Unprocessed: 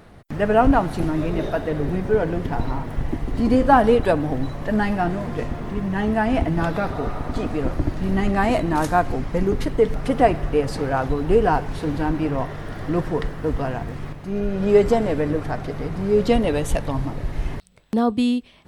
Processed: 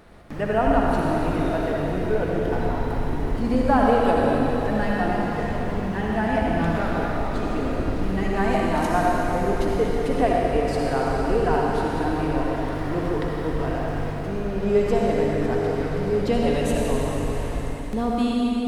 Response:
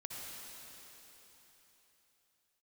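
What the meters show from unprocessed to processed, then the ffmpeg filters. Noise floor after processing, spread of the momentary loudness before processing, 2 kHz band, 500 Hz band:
-28 dBFS, 11 LU, -0.5 dB, -1.5 dB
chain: -filter_complex "[0:a]equalizer=f=130:t=o:w=0.63:g=-8.5,asplit=2[a][b];[b]acompressor=threshold=-27dB:ratio=6,volume=-1dB[c];[a][c]amix=inputs=2:normalize=0[d];[1:a]atrim=start_sample=2205[e];[d][e]afir=irnorm=-1:irlink=0,volume=-2dB"

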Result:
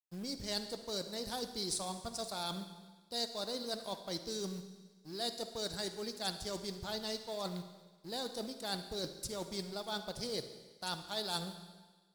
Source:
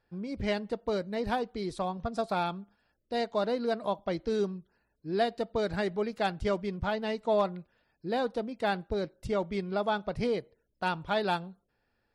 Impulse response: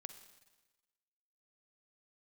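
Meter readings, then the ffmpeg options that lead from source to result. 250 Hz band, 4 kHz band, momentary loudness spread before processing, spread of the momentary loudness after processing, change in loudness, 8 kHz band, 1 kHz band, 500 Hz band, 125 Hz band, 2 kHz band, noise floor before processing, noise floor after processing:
-9.5 dB, +3.5 dB, 5 LU, 9 LU, -7.5 dB, n/a, -11.5 dB, -11.5 dB, -8.5 dB, -11.0 dB, -77 dBFS, -65 dBFS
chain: -filter_complex "[0:a]areverse,acompressor=threshold=-39dB:ratio=12,areverse,aexciter=amount=12.6:drive=4.2:freq=3.8k,acrusher=bits=5:mode=log:mix=0:aa=0.000001,aeval=exprs='sgn(val(0))*max(abs(val(0))-0.00141,0)':c=same[a];[1:a]atrim=start_sample=2205,asetrate=38808,aresample=44100[b];[a][b]afir=irnorm=-1:irlink=0,volume=6.5dB"

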